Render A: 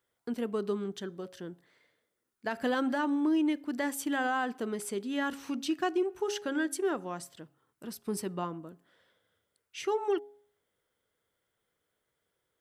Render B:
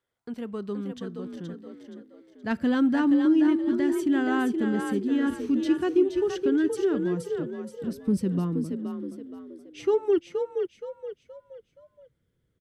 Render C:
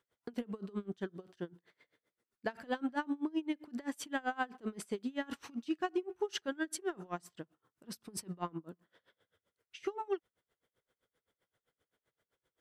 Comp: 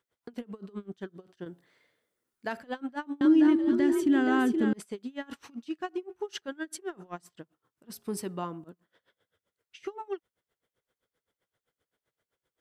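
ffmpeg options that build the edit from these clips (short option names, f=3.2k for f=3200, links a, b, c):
-filter_complex "[0:a]asplit=2[a][b];[2:a]asplit=4[c][d][e][f];[c]atrim=end=1.462[g];[a]atrim=start=1.458:end=2.602[h];[d]atrim=start=2.598:end=3.212[i];[1:a]atrim=start=3.208:end=4.732[j];[e]atrim=start=4.728:end=7.902[k];[b]atrim=start=7.898:end=8.642[l];[f]atrim=start=8.638[m];[g][h]acrossfade=d=0.004:c1=hsin:c2=hsin[n];[n][i]acrossfade=d=0.004:c1=hsin:c2=hsin[o];[o][j]acrossfade=d=0.004:c1=hsin:c2=hsin[p];[p][k]acrossfade=d=0.004:c1=hsin:c2=hsin[q];[q][l]acrossfade=d=0.004:c1=hsin:c2=hsin[r];[r][m]acrossfade=d=0.004:c1=hsin:c2=hsin"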